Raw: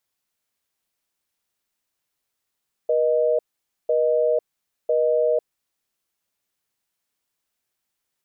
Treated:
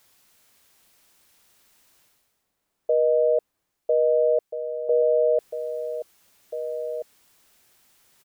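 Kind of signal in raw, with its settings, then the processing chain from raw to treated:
call progress tone busy tone, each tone −19.5 dBFS 2.81 s
reversed playback
upward compression, threshold −44 dBFS
reversed playback
slap from a distant wall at 280 metres, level −9 dB

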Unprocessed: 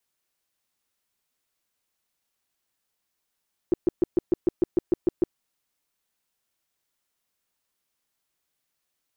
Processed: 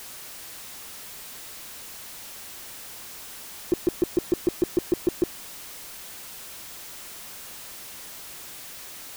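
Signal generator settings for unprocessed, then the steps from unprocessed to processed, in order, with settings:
tone bursts 350 Hz, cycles 6, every 0.15 s, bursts 11, −15.5 dBFS
converter with a step at zero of −34.5 dBFS

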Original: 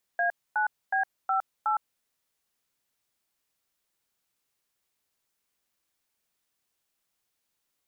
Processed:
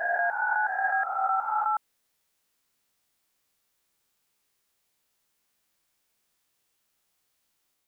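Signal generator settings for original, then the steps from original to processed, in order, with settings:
touch tones "A9B58", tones 111 ms, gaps 256 ms, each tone −25.5 dBFS
peak hold with a rise ahead of every peak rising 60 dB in 1.34 s
on a send: backwards echo 138 ms −3 dB

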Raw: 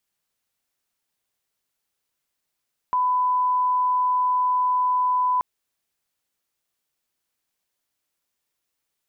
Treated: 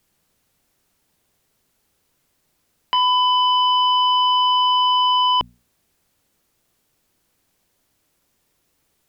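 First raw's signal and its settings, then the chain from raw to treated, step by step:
line-up tone −18 dBFS 2.48 s
low-shelf EQ 500 Hz +12 dB
mains-hum notches 60/120/180/240 Hz
sine wavefolder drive 7 dB, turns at −13.5 dBFS

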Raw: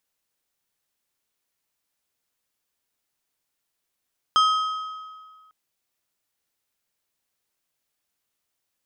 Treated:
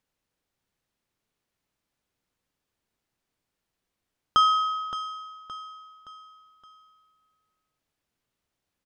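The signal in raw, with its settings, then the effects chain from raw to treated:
struck metal plate, length 1.15 s, lowest mode 1,270 Hz, decay 1.77 s, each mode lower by 7.5 dB, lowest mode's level −14 dB
low-pass filter 3,700 Hz 6 dB per octave
low-shelf EQ 370 Hz +9.5 dB
repeating echo 569 ms, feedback 43%, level −11 dB

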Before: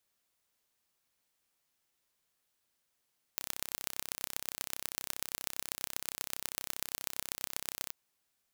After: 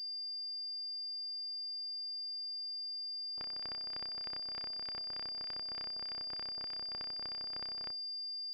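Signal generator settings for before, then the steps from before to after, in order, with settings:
impulse train 32.5 per second, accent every 4, −6 dBFS 4.54 s
hum removal 216.2 Hz, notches 4
asymmetric clip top −20.5 dBFS
switching amplifier with a slow clock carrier 4,800 Hz

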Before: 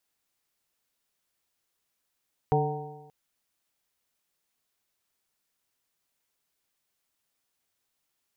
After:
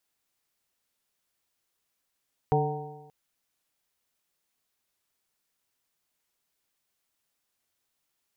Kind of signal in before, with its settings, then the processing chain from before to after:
stiff-string partials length 0.58 s, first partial 146 Hz, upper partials −10/0/−17/−0.5/−8.5 dB, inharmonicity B 0.0032, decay 1.07 s, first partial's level −23 dB
wow of a warped record 45 rpm, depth 100 cents

